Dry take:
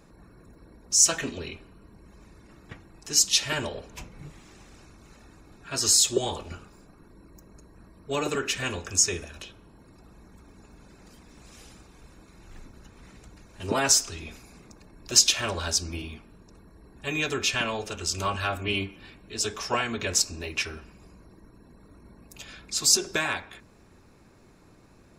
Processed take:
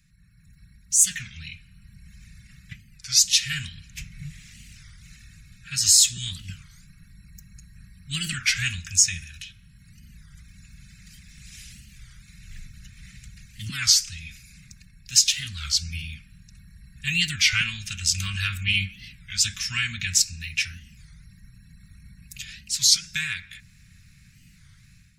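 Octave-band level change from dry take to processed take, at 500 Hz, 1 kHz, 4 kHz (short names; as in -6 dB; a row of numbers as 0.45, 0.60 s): under -35 dB, -13.5 dB, +4.0 dB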